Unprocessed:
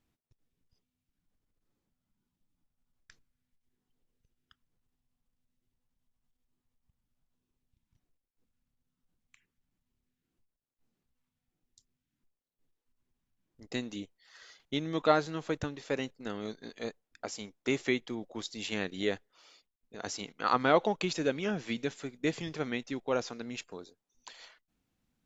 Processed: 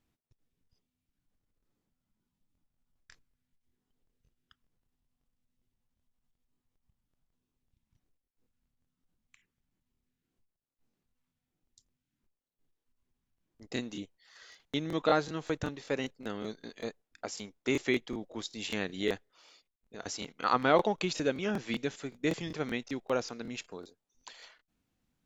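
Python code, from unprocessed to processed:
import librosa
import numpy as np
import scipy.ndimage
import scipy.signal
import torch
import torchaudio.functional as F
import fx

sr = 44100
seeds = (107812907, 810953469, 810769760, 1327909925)

y = fx.buffer_crackle(x, sr, first_s=0.63, period_s=0.19, block=1024, kind='repeat')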